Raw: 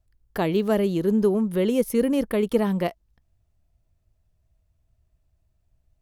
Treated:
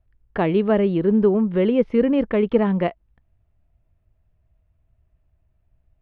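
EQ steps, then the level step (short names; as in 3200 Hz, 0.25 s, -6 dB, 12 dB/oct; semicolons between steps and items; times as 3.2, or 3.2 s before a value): LPF 2800 Hz 24 dB/oct; +3.5 dB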